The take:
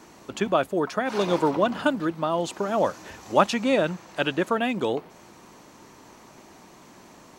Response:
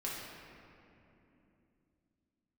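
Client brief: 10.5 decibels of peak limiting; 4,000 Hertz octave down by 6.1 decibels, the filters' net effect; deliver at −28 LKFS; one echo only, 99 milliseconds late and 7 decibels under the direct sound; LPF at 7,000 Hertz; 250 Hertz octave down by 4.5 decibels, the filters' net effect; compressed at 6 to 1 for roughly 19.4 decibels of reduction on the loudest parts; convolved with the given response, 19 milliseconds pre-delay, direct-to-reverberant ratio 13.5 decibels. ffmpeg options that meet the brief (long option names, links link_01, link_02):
-filter_complex "[0:a]lowpass=7000,equalizer=frequency=250:width_type=o:gain=-6,equalizer=frequency=4000:width_type=o:gain=-8,acompressor=threshold=-36dB:ratio=6,alimiter=level_in=8.5dB:limit=-24dB:level=0:latency=1,volume=-8.5dB,aecho=1:1:99:0.447,asplit=2[link_01][link_02];[1:a]atrim=start_sample=2205,adelay=19[link_03];[link_02][link_03]afir=irnorm=-1:irlink=0,volume=-16dB[link_04];[link_01][link_04]amix=inputs=2:normalize=0,volume=15.5dB"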